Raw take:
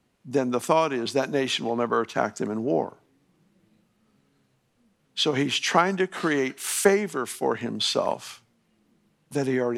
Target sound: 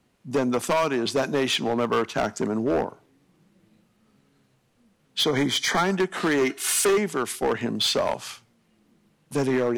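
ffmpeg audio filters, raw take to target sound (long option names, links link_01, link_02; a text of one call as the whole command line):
ffmpeg -i in.wav -filter_complex "[0:a]asettb=1/sr,asplit=3[link_01][link_02][link_03];[link_01]atrim=end=6.414[link_04];[link_02]atrim=start=6.41:end=6.98,asetpts=PTS-STARTPTS,afade=type=in:duration=0.004:curve=qsin,afade=type=out:start_time=0.566:duration=0.004:curve=qsin,aecho=1:1:2.8:0.72,atrim=end_sample=25137[link_05];[link_03]atrim=start=6.976[link_06];[link_04][link_05]acrossfade=duration=0.004:curve1=hsin:curve2=qsin[link_07];[link_07][link_06]acrossfade=duration=0.004:curve1=qsin:curve2=hsin,volume=20.5dB,asoftclip=hard,volume=-20.5dB,asettb=1/sr,asplit=3[link_08][link_09][link_10];[link_08]atrim=end=5.224[link_11];[link_09]atrim=start=5.22:end=5.84,asetpts=PTS-STARTPTS,afade=type=in:duration=0.004:curve=qsin,afade=type=out:start_time=0.616:duration=0.004:curve=qsin,asuperstop=centerf=2700:order=20:qfactor=5[link_12];[link_10]atrim=start=5.836[link_13];[link_11][link_12]acrossfade=duration=0.004:curve1=hsin:curve2=qsin[link_14];[link_14][link_13]acrossfade=duration=0.004:curve1=qsin:curve2=hsin,volume=3dB" out.wav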